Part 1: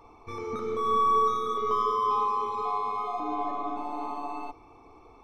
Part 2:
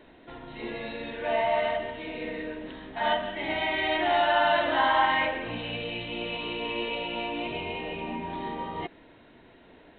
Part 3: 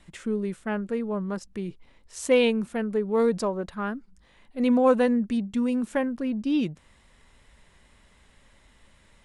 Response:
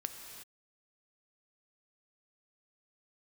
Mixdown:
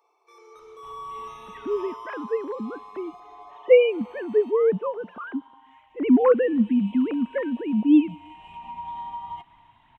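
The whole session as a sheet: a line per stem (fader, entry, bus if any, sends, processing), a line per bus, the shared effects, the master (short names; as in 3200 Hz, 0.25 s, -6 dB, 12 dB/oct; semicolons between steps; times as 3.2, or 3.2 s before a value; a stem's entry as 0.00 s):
-14.5 dB, 0.00 s, no send, elliptic high-pass 370 Hz, stop band 40 dB; high shelf 3700 Hz +11 dB
1.78 s -9.5 dB -> 2.32 s -22.5 dB -> 6.34 s -22.5 dB -> 6.87 s -16 dB -> 8.21 s -16 dB -> 8.81 s -4 dB, 0.55 s, send -9 dB, median filter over 9 samples; EQ curve 120 Hz 0 dB, 520 Hz -25 dB, 940 Hz +11 dB, 1500 Hz -14 dB, 3200 Hz +3 dB, 5000 Hz -14 dB; compressor 6:1, threshold -31 dBFS, peak gain reduction 15 dB
+2.5 dB, 1.40 s, send -22.5 dB, sine-wave speech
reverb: on, pre-delay 3 ms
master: dry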